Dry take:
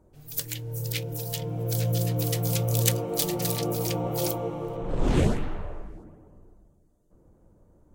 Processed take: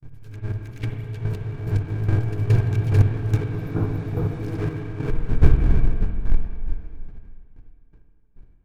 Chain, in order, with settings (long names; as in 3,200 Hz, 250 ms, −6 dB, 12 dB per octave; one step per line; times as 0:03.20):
each half-wave held at its own peak
granular cloud, grains 24 per second, spray 398 ms, pitch spread up and down by 0 semitones
wrong playback speed 48 kHz file played as 44.1 kHz
square-wave tremolo 2.4 Hz, depth 65%, duty 25%
noise gate with hold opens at −53 dBFS
spectral tilt −3.5 dB per octave
convolution reverb RT60 2.1 s, pre-delay 50 ms, DRR 5 dB
healed spectral selection 0:03.57–0:04.36, 1,500–11,000 Hz
parametric band 500 Hz −14.5 dB 0.49 octaves
hollow resonant body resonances 460/1,600/2,300 Hz, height 13 dB, ringing for 35 ms
level −4 dB